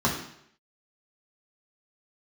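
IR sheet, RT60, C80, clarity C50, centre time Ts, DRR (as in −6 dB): 0.70 s, 9.0 dB, 6.0 dB, 28 ms, −4.0 dB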